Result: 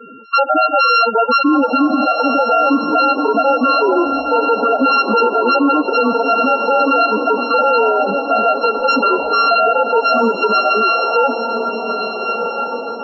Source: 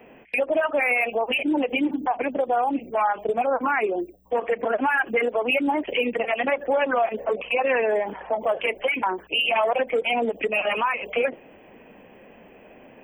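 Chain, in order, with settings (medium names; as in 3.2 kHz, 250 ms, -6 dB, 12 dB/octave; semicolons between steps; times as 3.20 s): sorted samples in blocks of 32 samples; loudest bins only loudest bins 8; on a send: echo that smears into a reverb 1439 ms, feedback 44%, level -9 dB; on the sum: loudness maximiser +21 dB; trim -5 dB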